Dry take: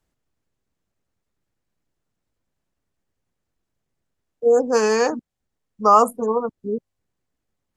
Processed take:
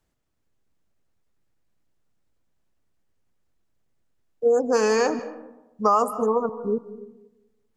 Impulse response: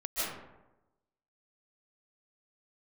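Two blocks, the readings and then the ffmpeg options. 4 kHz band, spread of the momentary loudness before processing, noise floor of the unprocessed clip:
-2.5 dB, 14 LU, -80 dBFS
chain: -filter_complex "[0:a]acompressor=threshold=0.141:ratio=4,asplit=2[s0][s1];[1:a]atrim=start_sample=2205,lowpass=7300[s2];[s1][s2]afir=irnorm=-1:irlink=0,volume=0.112[s3];[s0][s3]amix=inputs=2:normalize=0"

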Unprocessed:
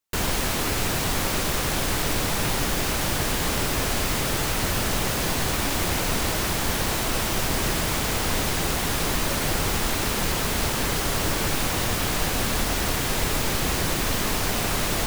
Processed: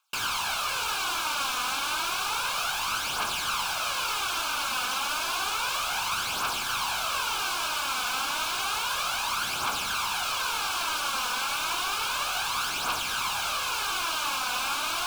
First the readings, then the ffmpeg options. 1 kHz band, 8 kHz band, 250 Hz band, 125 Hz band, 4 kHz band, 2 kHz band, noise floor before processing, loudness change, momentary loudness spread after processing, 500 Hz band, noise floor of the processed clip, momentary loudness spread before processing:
+0.5 dB, -5.0 dB, -19.5 dB, -23.0 dB, -0.5 dB, -1.5 dB, -26 dBFS, -3.5 dB, 0 LU, -13.0 dB, -31 dBFS, 0 LU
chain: -filter_complex "[0:a]highpass=f=940:w=0.5412,highpass=f=940:w=1.3066,alimiter=level_in=1.26:limit=0.0631:level=0:latency=1,volume=0.794,asplit=2[s0][s1];[s1]highpass=f=720:p=1,volume=5.62,asoftclip=type=tanh:threshold=0.0501[s2];[s0][s2]amix=inputs=2:normalize=0,lowpass=f=2000:p=1,volume=0.501,aphaser=in_gain=1:out_gain=1:delay=4.1:decay=0.48:speed=0.31:type=triangular,asuperstop=centerf=1900:order=4:qfactor=2.8,volume=2.51"

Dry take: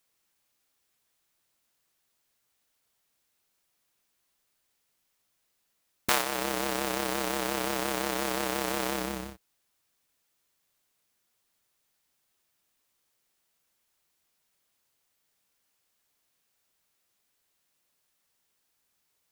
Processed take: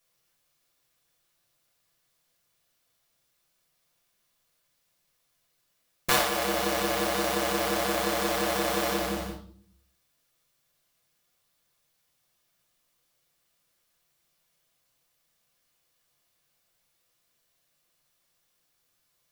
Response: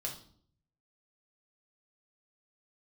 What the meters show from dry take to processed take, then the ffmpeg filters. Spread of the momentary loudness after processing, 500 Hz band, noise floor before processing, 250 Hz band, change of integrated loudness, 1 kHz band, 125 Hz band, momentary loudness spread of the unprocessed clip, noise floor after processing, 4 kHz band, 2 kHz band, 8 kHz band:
9 LU, +4.5 dB, -76 dBFS, +2.5 dB, +3.0 dB, +3.0 dB, +3.5 dB, 7 LU, -74 dBFS, +3.5 dB, +3.0 dB, +2.0 dB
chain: -filter_complex "[1:a]atrim=start_sample=2205[s0];[0:a][s0]afir=irnorm=-1:irlink=0,volume=1.33"

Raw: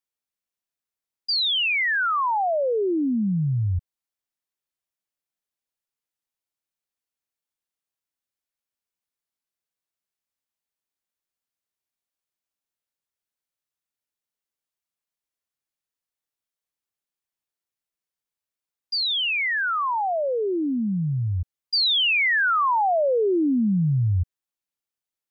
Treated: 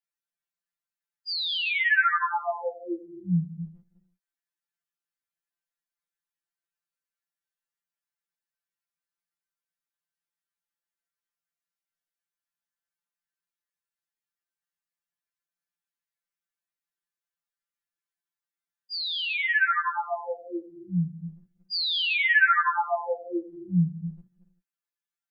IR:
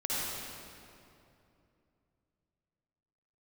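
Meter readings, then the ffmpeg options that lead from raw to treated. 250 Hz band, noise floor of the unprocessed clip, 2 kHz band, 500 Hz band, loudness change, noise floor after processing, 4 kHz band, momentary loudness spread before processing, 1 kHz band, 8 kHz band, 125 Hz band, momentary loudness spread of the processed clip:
-7.5 dB, under -85 dBFS, 0.0 dB, -10.0 dB, -3.5 dB, under -85 dBFS, -6.0 dB, 8 LU, -4.0 dB, no reading, -7.5 dB, 17 LU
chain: -filter_complex "[0:a]equalizer=f=100:t=o:w=0.67:g=7,equalizer=f=400:t=o:w=0.67:g=-8,equalizer=f=1600:t=o:w=0.67:g=10,asplit=2[s0][s1];[1:a]atrim=start_sample=2205,afade=t=out:st=0.3:d=0.01,atrim=end_sample=13671,adelay=97[s2];[s1][s2]afir=irnorm=-1:irlink=0,volume=0.168[s3];[s0][s3]amix=inputs=2:normalize=0,afftfilt=real='re*2.83*eq(mod(b,8),0)':imag='im*2.83*eq(mod(b,8),0)':win_size=2048:overlap=0.75,volume=0.562"

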